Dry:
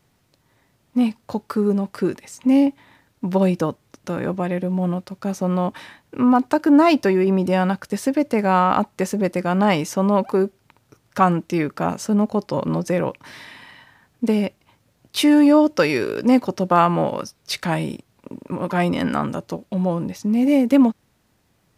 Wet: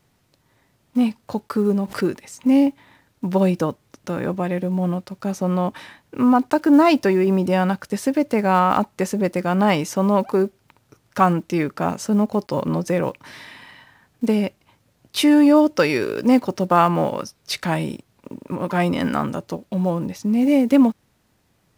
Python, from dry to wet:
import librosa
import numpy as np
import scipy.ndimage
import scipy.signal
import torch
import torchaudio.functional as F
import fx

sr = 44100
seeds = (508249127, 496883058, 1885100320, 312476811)

y = fx.block_float(x, sr, bits=7)
y = fx.pre_swell(y, sr, db_per_s=140.0, at=(1.55, 2.03))